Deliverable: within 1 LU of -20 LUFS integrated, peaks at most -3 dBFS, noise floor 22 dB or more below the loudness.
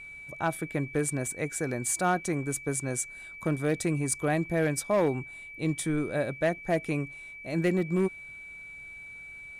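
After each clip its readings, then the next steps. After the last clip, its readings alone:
clipped samples 0.4%; clipping level -18.5 dBFS; steady tone 2.3 kHz; tone level -42 dBFS; loudness -29.5 LUFS; peak level -18.5 dBFS; loudness target -20.0 LUFS
-> clip repair -18.5 dBFS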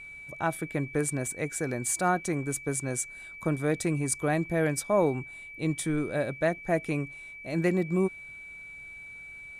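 clipped samples 0.0%; steady tone 2.3 kHz; tone level -42 dBFS
-> band-stop 2.3 kHz, Q 30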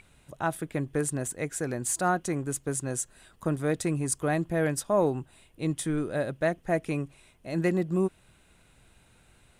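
steady tone not found; loudness -29.5 LUFS; peak level -14.0 dBFS; loudness target -20.0 LUFS
-> trim +9.5 dB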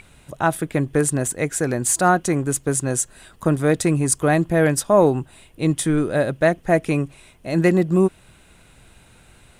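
loudness -20.0 LUFS; peak level -4.5 dBFS; noise floor -52 dBFS

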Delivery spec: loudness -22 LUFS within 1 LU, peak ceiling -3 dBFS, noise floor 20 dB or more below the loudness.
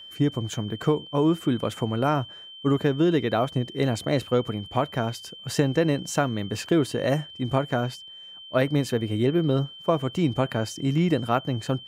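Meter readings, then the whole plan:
steady tone 3.1 kHz; tone level -41 dBFS; loudness -25.5 LUFS; peak level -8.5 dBFS; loudness target -22.0 LUFS
-> band-stop 3.1 kHz, Q 30; trim +3.5 dB

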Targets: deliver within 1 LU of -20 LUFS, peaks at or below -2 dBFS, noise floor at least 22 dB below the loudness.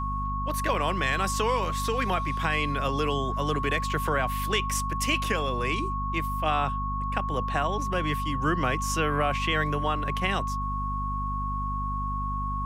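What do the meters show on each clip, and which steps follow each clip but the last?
hum 50 Hz; highest harmonic 250 Hz; hum level -29 dBFS; steady tone 1.1 kHz; tone level -30 dBFS; loudness -27.5 LUFS; peak level -12.0 dBFS; loudness target -20.0 LUFS
-> de-hum 50 Hz, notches 5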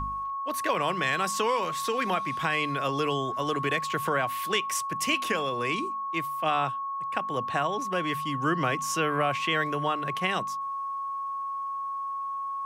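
hum not found; steady tone 1.1 kHz; tone level -30 dBFS
-> band-stop 1.1 kHz, Q 30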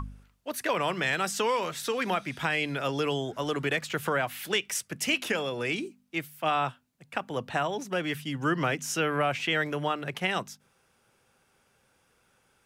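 steady tone not found; loudness -29.5 LUFS; peak level -14.5 dBFS; loudness target -20.0 LUFS
-> trim +9.5 dB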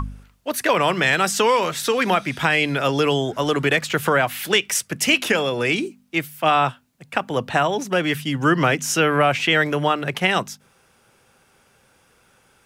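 loudness -20.0 LUFS; peak level -5.0 dBFS; noise floor -59 dBFS

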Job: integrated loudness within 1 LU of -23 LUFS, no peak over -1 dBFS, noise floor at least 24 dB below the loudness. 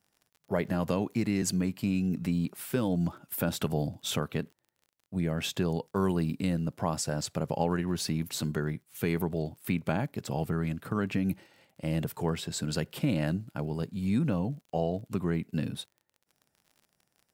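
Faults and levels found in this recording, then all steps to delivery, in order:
tick rate 39 per s; loudness -31.5 LUFS; peak level -12.5 dBFS; loudness target -23.0 LUFS
-> de-click; trim +8.5 dB

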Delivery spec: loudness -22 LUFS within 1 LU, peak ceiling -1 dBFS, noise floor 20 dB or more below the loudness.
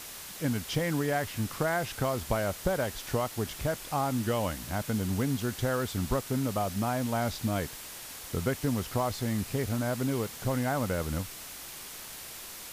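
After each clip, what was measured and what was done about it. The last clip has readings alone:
noise floor -44 dBFS; noise floor target -52 dBFS; loudness -31.5 LUFS; peak level -15.0 dBFS; loudness target -22.0 LUFS
-> noise reduction 8 dB, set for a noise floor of -44 dBFS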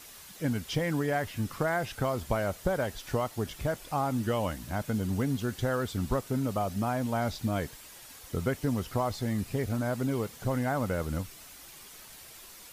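noise floor -50 dBFS; noise floor target -52 dBFS
-> noise reduction 6 dB, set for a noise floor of -50 dBFS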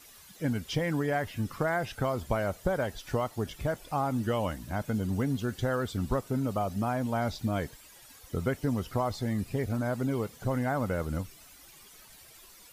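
noise floor -54 dBFS; loudness -31.5 LUFS; peak level -15.0 dBFS; loudness target -22.0 LUFS
-> trim +9.5 dB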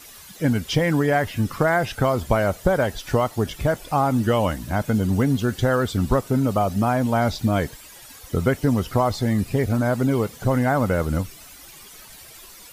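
loudness -22.0 LUFS; peak level -5.5 dBFS; noise floor -44 dBFS

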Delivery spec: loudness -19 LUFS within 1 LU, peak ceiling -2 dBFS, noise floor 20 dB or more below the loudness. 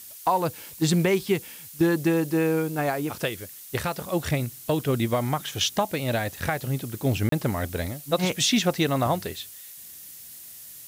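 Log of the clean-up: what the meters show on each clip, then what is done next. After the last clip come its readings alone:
dropouts 1; longest dropout 33 ms; noise floor -44 dBFS; noise floor target -46 dBFS; loudness -25.5 LUFS; peak level -11.0 dBFS; loudness target -19.0 LUFS
-> interpolate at 7.29 s, 33 ms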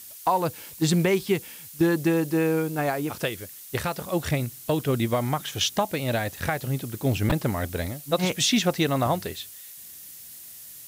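dropouts 0; noise floor -44 dBFS; noise floor target -46 dBFS
-> noise reduction 6 dB, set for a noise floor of -44 dBFS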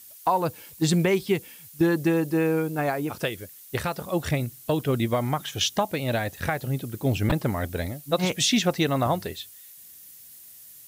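noise floor -48 dBFS; loudness -26.0 LUFS; peak level -11.0 dBFS; loudness target -19.0 LUFS
-> trim +7 dB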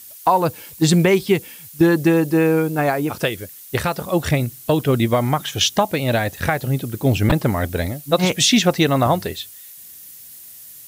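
loudness -19.0 LUFS; peak level -4.0 dBFS; noise floor -41 dBFS

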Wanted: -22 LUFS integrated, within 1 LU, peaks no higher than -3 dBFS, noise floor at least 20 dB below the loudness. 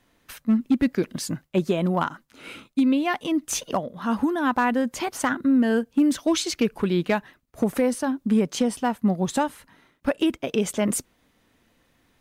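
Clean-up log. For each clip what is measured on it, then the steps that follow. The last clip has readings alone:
clipped samples 0.3%; clipping level -13.0 dBFS; loudness -24.5 LUFS; peak level -13.0 dBFS; loudness target -22.0 LUFS
-> clip repair -13 dBFS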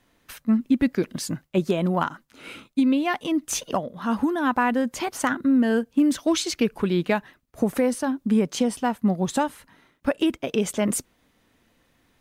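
clipped samples 0.0%; loudness -24.0 LUFS; peak level -7.5 dBFS; loudness target -22.0 LUFS
-> trim +2 dB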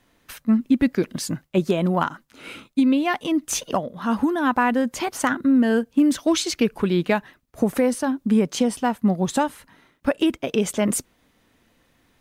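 loudness -22.0 LUFS; peak level -5.5 dBFS; noise floor -64 dBFS

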